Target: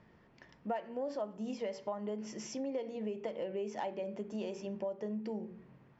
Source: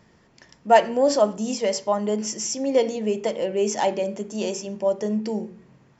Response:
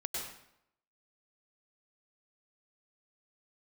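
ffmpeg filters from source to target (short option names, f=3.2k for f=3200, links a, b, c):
-af "lowpass=2.9k,acompressor=threshold=-30dB:ratio=6,volume=-5.5dB"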